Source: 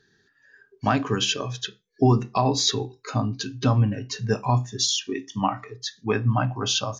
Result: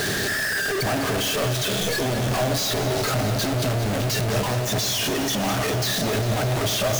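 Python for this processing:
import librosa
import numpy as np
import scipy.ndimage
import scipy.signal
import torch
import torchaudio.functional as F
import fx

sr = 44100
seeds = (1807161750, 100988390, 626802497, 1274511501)

p1 = np.sign(x) * np.sqrt(np.mean(np.square(x)))
p2 = fx.graphic_eq_31(p1, sr, hz=(100, 630, 1000), db=(4, 10, -4))
y = p2 + fx.echo_alternate(p2, sr, ms=101, hz=1100.0, feedback_pct=88, wet_db=-10.5, dry=0)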